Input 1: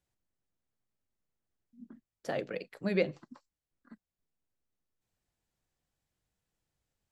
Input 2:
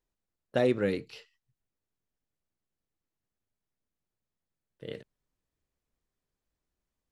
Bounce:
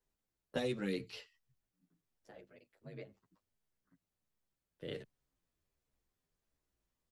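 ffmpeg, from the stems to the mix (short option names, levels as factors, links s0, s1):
-filter_complex "[0:a]aecho=1:1:5.1:0.35,aeval=exprs='val(0)*sin(2*PI*54*n/s)':c=same,bandreject=f=4400:w=22,volume=0.168[s0];[1:a]volume=1.33,asplit=2[s1][s2];[s2]apad=whole_len=314107[s3];[s0][s3]sidechaincompress=threshold=0.00631:ratio=8:attack=16:release=832[s4];[s4][s1]amix=inputs=2:normalize=0,acrossover=split=130|3000[s5][s6][s7];[s6]acompressor=threshold=0.0224:ratio=4[s8];[s5][s8][s7]amix=inputs=3:normalize=0,asplit=2[s9][s10];[s10]adelay=10.3,afreqshift=-1.4[s11];[s9][s11]amix=inputs=2:normalize=1"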